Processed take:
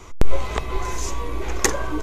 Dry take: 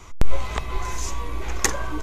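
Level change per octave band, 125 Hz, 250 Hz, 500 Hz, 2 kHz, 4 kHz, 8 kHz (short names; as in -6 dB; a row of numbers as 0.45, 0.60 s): +1.0, +4.5, +6.0, +1.0, +1.0, +1.0 dB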